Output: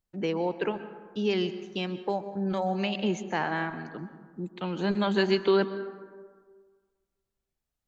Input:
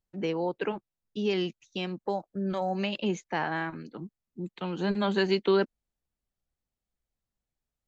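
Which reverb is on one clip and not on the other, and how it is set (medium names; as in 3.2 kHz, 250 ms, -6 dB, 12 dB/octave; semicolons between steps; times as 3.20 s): plate-style reverb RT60 1.6 s, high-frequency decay 0.4×, pre-delay 115 ms, DRR 12 dB; trim +1 dB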